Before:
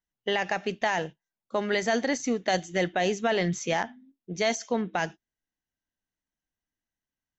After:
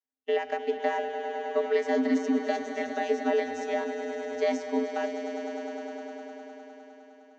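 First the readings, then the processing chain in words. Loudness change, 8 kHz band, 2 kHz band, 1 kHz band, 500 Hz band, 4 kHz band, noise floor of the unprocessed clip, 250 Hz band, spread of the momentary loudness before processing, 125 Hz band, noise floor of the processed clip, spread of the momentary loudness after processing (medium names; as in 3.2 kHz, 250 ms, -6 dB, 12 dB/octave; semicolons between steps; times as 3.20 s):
-1.5 dB, no reading, -5.5 dB, -1.5 dB, +1.5 dB, -9.5 dB, under -85 dBFS, +1.0 dB, 6 LU, under -25 dB, -55 dBFS, 15 LU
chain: hum notches 50/100/150/200/250 Hz; vocoder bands 32, square 87.1 Hz; echo with a slow build-up 102 ms, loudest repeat 5, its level -12 dB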